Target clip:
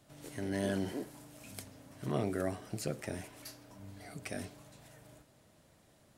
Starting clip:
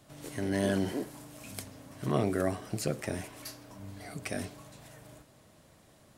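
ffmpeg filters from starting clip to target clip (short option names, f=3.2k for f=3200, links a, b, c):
-af "bandreject=f=1.1k:w=20,volume=-5dB"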